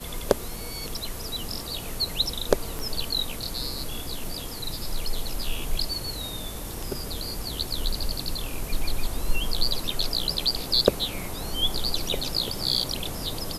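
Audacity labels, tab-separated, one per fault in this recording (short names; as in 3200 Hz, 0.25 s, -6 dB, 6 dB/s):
2.790000	2.790000	pop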